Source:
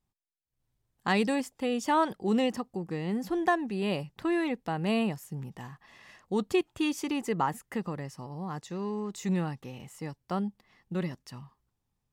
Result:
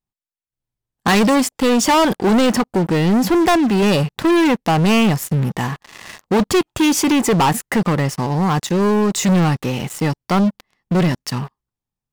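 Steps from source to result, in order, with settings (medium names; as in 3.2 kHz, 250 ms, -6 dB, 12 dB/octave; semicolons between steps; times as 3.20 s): peaking EQ 72 Hz -3.5 dB 1 oct; waveshaping leveller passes 5; trim +4 dB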